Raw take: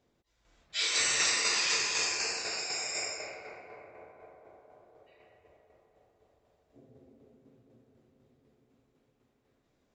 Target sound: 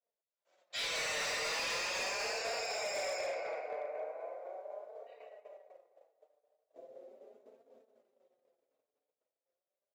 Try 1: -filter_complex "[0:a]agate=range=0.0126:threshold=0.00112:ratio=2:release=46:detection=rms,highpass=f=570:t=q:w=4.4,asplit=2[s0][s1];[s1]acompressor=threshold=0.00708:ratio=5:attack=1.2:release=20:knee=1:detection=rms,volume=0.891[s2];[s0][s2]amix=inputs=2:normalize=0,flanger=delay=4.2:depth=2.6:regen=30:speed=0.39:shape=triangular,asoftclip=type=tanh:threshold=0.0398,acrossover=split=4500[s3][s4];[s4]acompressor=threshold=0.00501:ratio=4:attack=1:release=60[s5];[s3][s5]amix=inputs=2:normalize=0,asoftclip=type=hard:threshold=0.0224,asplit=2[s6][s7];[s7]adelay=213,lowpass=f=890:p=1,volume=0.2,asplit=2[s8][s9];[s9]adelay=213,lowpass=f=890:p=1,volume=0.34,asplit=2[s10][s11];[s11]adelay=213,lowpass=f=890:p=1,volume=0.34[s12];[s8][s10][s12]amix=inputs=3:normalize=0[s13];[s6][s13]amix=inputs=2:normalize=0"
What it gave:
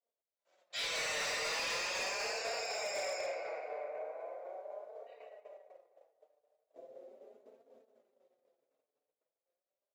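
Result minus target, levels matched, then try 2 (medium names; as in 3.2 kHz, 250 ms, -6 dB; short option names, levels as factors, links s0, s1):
compression: peak gain reduction +6 dB
-filter_complex "[0:a]agate=range=0.0126:threshold=0.00112:ratio=2:release=46:detection=rms,highpass=f=570:t=q:w=4.4,asplit=2[s0][s1];[s1]acompressor=threshold=0.0168:ratio=5:attack=1.2:release=20:knee=1:detection=rms,volume=0.891[s2];[s0][s2]amix=inputs=2:normalize=0,flanger=delay=4.2:depth=2.6:regen=30:speed=0.39:shape=triangular,asoftclip=type=tanh:threshold=0.0398,acrossover=split=4500[s3][s4];[s4]acompressor=threshold=0.00501:ratio=4:attack=1:release=60[s5];[s3][s5]amix=inputs=2:normalize=0,asoftclip=type=hard:threshold=0.0224,asplit=2[s6][s7];[s7]adelay=213,lowpass=f=890:p=1,volume=0.2,asplit=2[s8][s9];[s9]adelay=213,lowpass=f=890:p=1,volume=0.34,asplit=2[s10][s11];[s11]adelay=213,lowpass=f=890:p=1,volume=0.34[s12];[s8][s10][s12]amix=inputs=3:normalize=0[s13];[s6][s13]amix=inputs=2:normalize=0"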